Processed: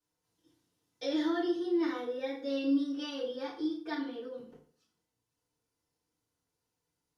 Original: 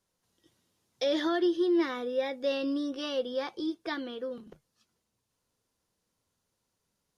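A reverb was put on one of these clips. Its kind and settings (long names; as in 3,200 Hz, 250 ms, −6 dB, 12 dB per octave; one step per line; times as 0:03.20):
feedback delay network reverb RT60 0.5 s, low-frequency decay 1×, high-frequency decay 0.8×, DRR −10 dB
level −15 dB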